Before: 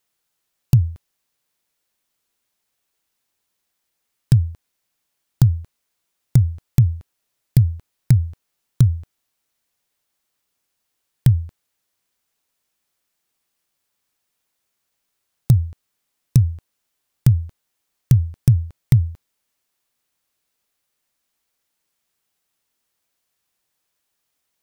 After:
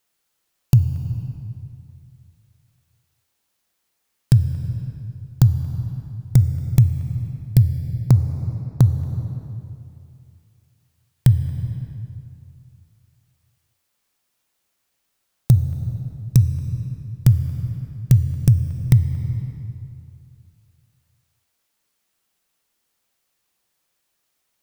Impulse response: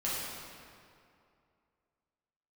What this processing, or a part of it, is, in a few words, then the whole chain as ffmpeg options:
ducked reverb: -filter_complex "[0:a]asplit=3[a][b][c];[a]afade=t=out:st=7.62:d=0.02[d];[b]agate=range=-16dB:threshold=-23dB:ratio=16:detection=peak,afade=t=in:st=7.62:d=0.02,afade=t=out:st=8.88:d=0.02[e];[c]afade=t=in:st=8.88:d=0.02[f];[d][e][f]amix=inputs=3:normalize=0,asplit=3[g][h][i];[1:a]atrim=start_sample=2205[j];[h][j]afir=irnorm=-1:irlink=0[k];[i]apad=whole_len=1086069[l];[k][l]sidechaincompress=threshold=-18dB:ratio=4:attack=5.7:release=524,volume=-7.5dB[m];[g][m]amix=inputs=2:normalize=0,volume=-1dB"

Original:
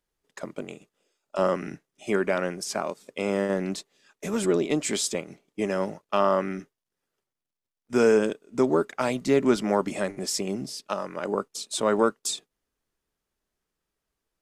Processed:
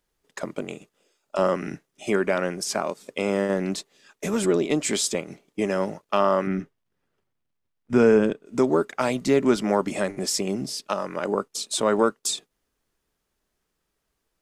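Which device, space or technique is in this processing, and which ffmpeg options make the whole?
parallel compression: -filter_complex "[0:a]asplit=2[a][b];[b]acompressor=threshold=-33dB:ratio=6,volume=-0.5dB[c];[a][c]amix=inputs=2:normalize=0,asettb=1/sr,asplit=3[d][e][f];[d]atrim=end=6.474[g];[e]atrim=start=6.47:end=8.46,asetpts=PTS-STARTPTS,afade=t=in:d=0.004:c=qsin,afade=t=out:st=1.986:d=0.004:c=qsin,bass=f=250:g=7,treble=f=4k:g=-10[h];[f]atrim=start=8.456[i];[g][h]acrossfade=d=0.004:c1=hsin:c2=qsin[j];[j][i]acrossfade=d=0.004:c1=qsin:c2=hsin"

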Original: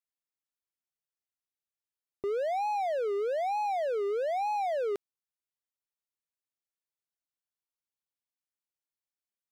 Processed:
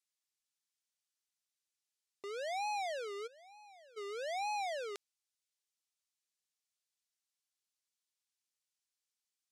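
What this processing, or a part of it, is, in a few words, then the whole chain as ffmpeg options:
piezo pickup straight into a mixer: -filter_complex "[0:a]asplit=3[a][b][c];[a]afade=t=out:st=3.26:d=0.02[d];[b]agate=range=-33dB:threshold=-17dB:ratio=3:detection=peak,afade=t=in:st=3.26:d=0.02,afade=t=out:st=3.96:d=0.02[e];[c]afade=t=in:st=3.96:d=0.02[f];[d][e][f]amix=inputs=3:normalize=0,lowpass=6.5k,aderivative,volume=11.5dB"

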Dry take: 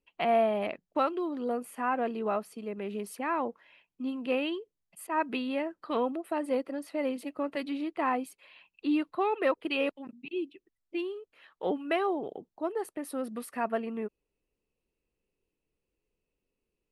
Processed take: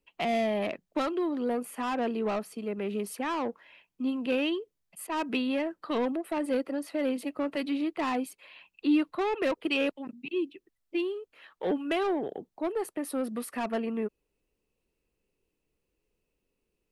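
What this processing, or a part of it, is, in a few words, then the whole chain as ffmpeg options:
one-band saturation: -filter_complex "[0:a]acrossover=split=390|2500[a][b][c];[b]asoftclip=type=tanh:threshold=-34dB[d];[a][d][c]amix=inputs=3:normalize=0,volume=4dB"

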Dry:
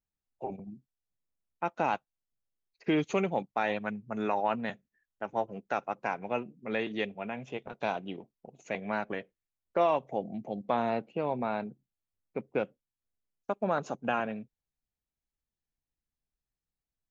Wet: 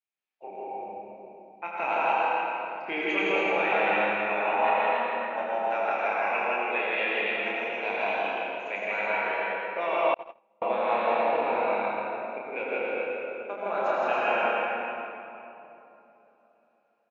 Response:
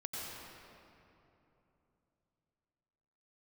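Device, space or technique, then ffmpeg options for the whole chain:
station announcement: -filter_complex "[0:a]highpass=460,lowpass=4.1k,equalizer=f=2.4k:t=o:w=0.47:g=11,aecho=1:1:30|78|154.8|277.7|474.3:0.631|0.398|0.251|0.158|0.1,aecho=1:1:163.3|279.9:0.891|0.562[a];[1:a]atrim=start_sample=2205[b];[a][b]afir=irnorm=-1:irlink=0,asettb=1/sr,asplit=3[c][d][e];[c]atrim=end=10.144[f];[d]atrim=start=10.14:end=10.62,asetpts=PTS-STARTPTS,afade=t=in:d=0.004:c=qsin,afade=t=out:st=0.476:d=0.004:c=qsin,agate=range=-41dB:threshold=-19dB:ratio=16:detection=peak[g];[e]atrim=start=10.616[h];[f][g]acrossfade=d=0.004:c1=hsin:c2=qsin[i];[i][h]acrossfade=d=0.004:c1=qsin:c2=hsin"

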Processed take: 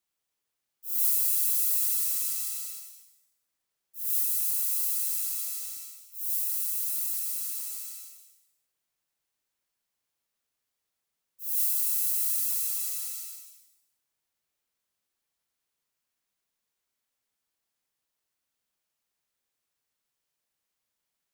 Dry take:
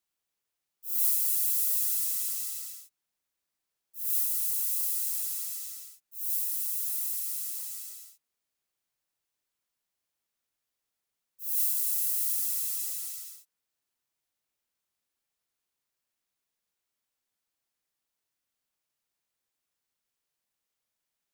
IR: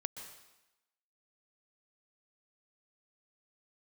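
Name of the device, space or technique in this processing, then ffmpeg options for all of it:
bathroom: -filter_complex "[1:a]atrim=start_sample=2205[a];[0:a][a]afir=irnorm=-1:irlink=0,volume=2.5dB"

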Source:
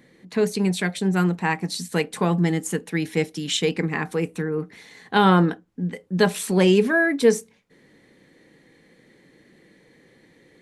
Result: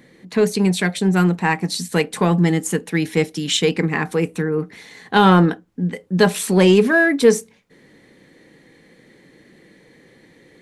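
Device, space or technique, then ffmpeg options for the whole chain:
parallel distortion: -filter_complex "[0:a]asplit=2[a][b];[b]asoftclip=type=hard:threshold=-16.5dB,volume=-10dB[c];[a][c]amix=inputs=2:normalize=0,volume=2.5dB"

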